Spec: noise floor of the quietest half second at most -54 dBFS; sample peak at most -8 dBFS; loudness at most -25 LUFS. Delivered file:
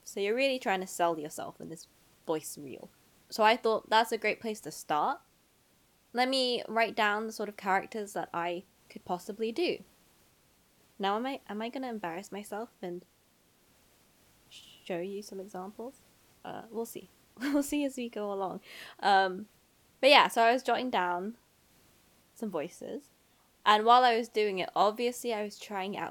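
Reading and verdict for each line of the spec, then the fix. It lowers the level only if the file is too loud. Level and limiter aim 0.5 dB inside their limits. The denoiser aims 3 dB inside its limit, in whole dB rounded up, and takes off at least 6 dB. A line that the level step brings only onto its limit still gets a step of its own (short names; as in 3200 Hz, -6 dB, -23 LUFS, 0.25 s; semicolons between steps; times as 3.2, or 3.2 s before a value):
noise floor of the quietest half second -67 dBFS: OK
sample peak -7.0 dBFS: fail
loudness -30.5 LUFS: OK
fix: limiter -8.5 dBFS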